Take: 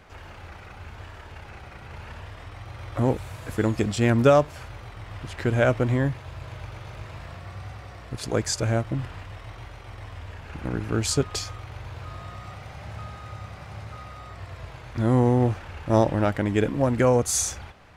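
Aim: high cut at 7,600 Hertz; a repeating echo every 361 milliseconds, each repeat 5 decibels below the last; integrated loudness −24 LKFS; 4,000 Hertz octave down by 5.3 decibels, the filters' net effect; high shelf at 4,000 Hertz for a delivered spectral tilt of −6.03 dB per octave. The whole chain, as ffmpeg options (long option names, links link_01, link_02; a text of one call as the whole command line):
ffmpeg -i in.wav -af "lowpass=7600,highshelf=frequency=4000:gain=-3.5,equalizer=frequency=4000:width_type=o:gain=-4,aecho=1:1:361|722|1083|1444|1805|2166|2527:0.562|0.315|0.176|0.0988|0.0553|0.031|0.0173" out.wav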